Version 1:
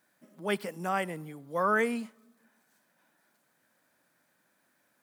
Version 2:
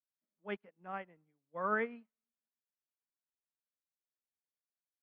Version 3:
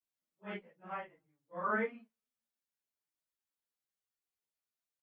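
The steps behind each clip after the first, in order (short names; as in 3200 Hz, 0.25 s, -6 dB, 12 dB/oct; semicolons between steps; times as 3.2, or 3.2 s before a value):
LPF 2800 Hz 24 dB/oct; upward expander 2.5:1, over -47 dBFS; gain -5 dB
phase scrambler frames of 0.1 s; endless flanger 10 ms -2.9 Hz; gain +3 dB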